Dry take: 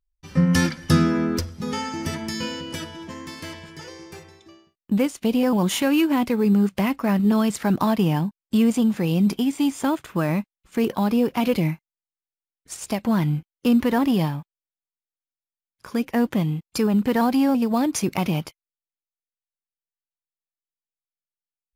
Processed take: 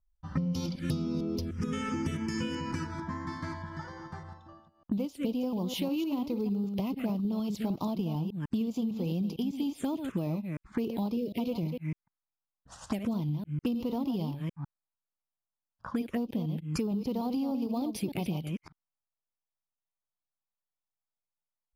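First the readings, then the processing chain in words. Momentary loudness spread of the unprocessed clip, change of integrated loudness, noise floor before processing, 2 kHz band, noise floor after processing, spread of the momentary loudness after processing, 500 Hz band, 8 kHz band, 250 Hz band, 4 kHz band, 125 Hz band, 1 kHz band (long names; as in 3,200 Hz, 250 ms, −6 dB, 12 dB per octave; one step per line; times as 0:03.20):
16 LU, −11.0 dB, below −85 dBFS, −14.5 dB, below −85 dBFS, 8 LU, −11.5 dB, −15.0 dB, −10.5 dB, −11.5 dB, −9.0 dB, −13.0 dB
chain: delay that plays each chunk backwards 151 ms, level −8.5 dB
low-pass that shuts in the quiet parts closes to 1,500 Hz, open at −20 dBFS
phaser swept by the level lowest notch 370 Hz, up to 1,700 Hz, full sweep at −17.5 dBFS
dynamic equaliser 1,900 Hz, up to −7 dB, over −49 dBFS, Q 1.6
downward compressor 12 to 1, threshold −32 dBFS, peak gain reduction 20 dB
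gain on a spectral selection 0:11.16–0:11.38, 700–1,800 Hz −24 dB
level +3.5 dB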